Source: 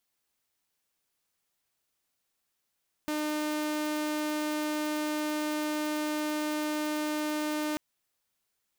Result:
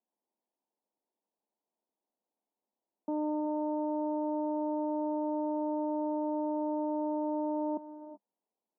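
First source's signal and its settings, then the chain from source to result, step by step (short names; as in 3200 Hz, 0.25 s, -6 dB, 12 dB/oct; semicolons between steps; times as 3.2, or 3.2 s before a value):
tone saw 303 Hz -26.5 dBFS 4.69 s
Chebyshev band-pass 200–960 Hz, order 4; non-linear reverb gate 0.41 s rising, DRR 11.5 dB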